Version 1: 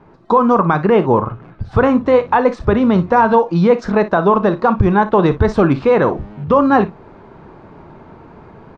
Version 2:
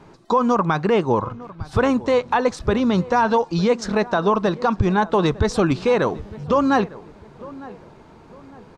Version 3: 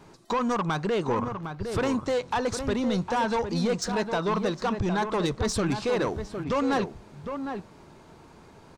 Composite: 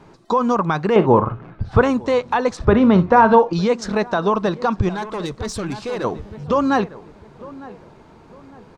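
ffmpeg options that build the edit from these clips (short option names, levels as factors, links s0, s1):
-filter_complex "[0:a]asplit=2[s0][s1];[1:a]asplit=4[s2][s3][s4][s5];[s2]atrim=end=0.962[s6];[s0]atrim=start=0.958:end=1.822[s7];[s3]atrim=start=1.818:end=2.572[s8];[s1]atrim=start=2.568:end=3.532[s9];[s4]atrim=start=3.528:end=4.892[s10];[2:a]atrim=start=4.888:end=6.042[s11];[s5]atrim=start=6.038[s12];[s6][s7]acrossfade=d=0.004:c1=hsin:c2=hsin[s13];[s13][s8]acrossfade=d=0.004:c1=hsin:c2=hsin[s14];[s14][s9]acrossfade=d=0.004:c1=hsin:c2=hsin[s15];[s15][s10]acrossfade=d=0.004:c1=hsin:c2=hsin[s16];[s16][s11]acrossfade=d=0.004:c1=hsin:c2=hsin[s17];[s17][s12]acrossfade=d=0.004:c1=hsin:c2=hsin"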